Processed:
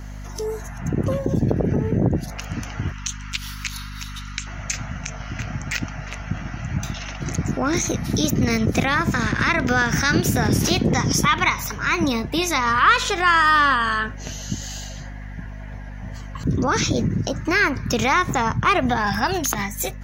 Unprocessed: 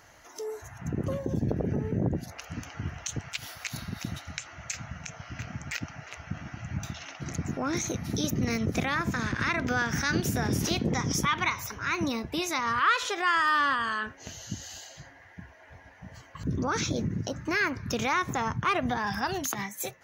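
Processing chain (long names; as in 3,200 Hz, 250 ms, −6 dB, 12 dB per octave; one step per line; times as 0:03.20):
0:02.92–0:04.47: Chebyshev high-pass with heavy ripple 920 Hz, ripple 3 dB
mains hum 50 Hz, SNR 12 dB
tape wow and flutter 20 cents
level +8.5 dB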